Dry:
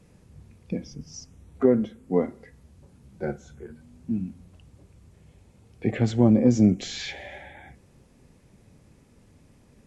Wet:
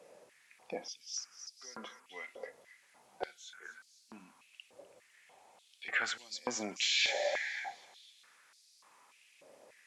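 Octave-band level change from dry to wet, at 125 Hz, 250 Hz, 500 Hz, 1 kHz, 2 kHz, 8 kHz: under -35 dB, -28.0 dB, -14.5 dB, -4.0 dB, +5.0 dB, no reading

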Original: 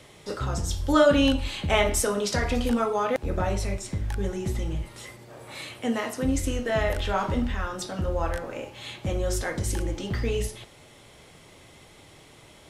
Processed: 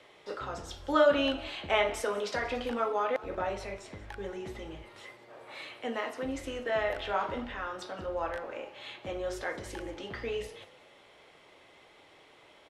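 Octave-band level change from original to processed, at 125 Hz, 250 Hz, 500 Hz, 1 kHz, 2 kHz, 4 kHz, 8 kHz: -18.5 dB, -10.5 dB, -4.5 dB, -3.5 dB, -4.0 dB, -6.0 dB, -15.5 dB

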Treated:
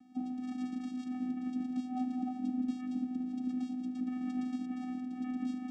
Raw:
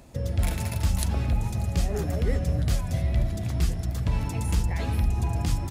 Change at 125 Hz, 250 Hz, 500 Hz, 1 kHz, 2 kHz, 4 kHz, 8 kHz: -32.0 dB, +1.5 dB, under -20 dB, -8.0 dB, under -15 dB, under -15 dB, under -25 dB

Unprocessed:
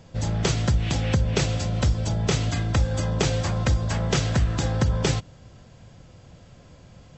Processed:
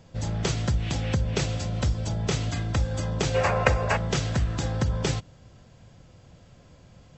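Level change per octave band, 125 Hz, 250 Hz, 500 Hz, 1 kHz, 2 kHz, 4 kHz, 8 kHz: -3.5 dB, -3.5 dB, 0.0 dB, +1.5 dB, +1.0 dB, -3.0 dB, -3.5 dB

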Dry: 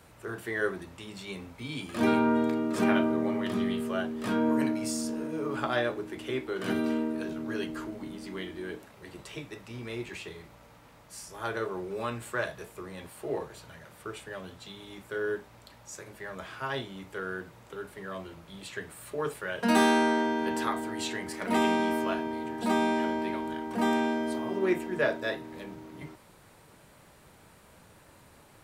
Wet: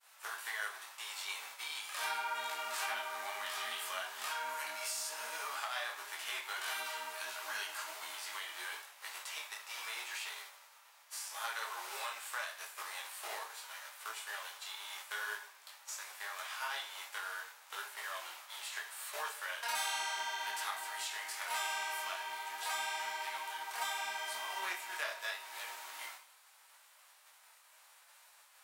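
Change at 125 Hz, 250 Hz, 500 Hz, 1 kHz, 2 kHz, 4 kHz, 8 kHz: under -40 dB, under -40 dB, -20.0 dB, -7.0 dB, -3.5 dB, +0.5 dB, +2.0 dB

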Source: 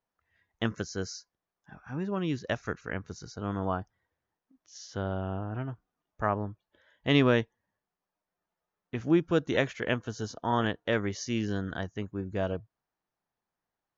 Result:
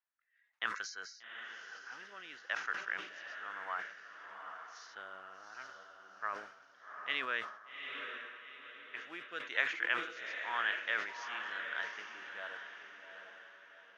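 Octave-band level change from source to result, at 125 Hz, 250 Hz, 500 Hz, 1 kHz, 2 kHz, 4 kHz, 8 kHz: under -35 dB, -28.0 dB, -19.0 dB, -6.0 dB, +1.5 dB, -4.5 dB, no reading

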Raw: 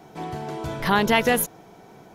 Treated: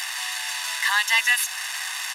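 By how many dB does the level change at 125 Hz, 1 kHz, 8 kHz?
under -40 dB, -5.5 dB, +7.0 dB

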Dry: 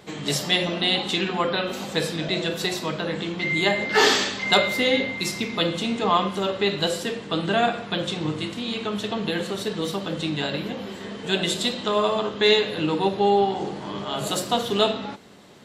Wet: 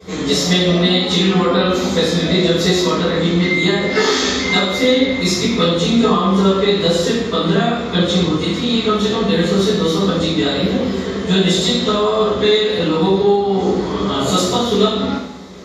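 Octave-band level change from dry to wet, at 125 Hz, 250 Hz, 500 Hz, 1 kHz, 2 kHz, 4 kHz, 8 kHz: +13.0 dB, +12.0 dB, +9.0 dB, +4.5 dB, +4.0 dB, +6.5 dB, +7.5 dB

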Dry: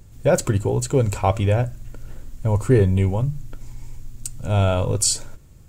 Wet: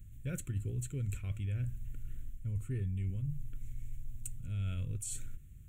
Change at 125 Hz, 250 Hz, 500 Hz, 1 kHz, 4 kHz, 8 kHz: -15.0 dB, -20.0 dB, -31.5 dB, under -35 dB, under -25 dB, -19.5 dB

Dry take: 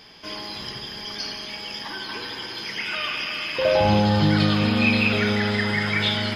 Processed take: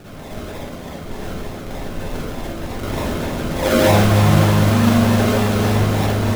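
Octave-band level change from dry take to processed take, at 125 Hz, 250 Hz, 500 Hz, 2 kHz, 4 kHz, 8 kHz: +9.0 dB, +5.5 dB, +5.5 dB, -1.5 dB, -3.0 dB, +13.5 dB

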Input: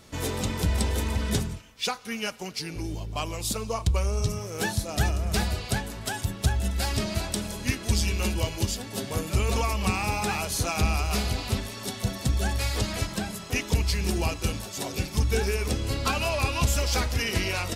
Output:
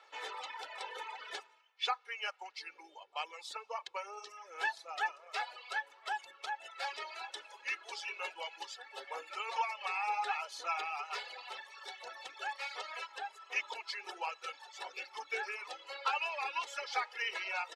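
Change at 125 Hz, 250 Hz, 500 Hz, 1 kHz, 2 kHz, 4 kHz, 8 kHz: under -40 dB, under -35 dB, -16.0 dB, -4.0 dB, -5.5 dB, -11.0 dB, -21.5 dB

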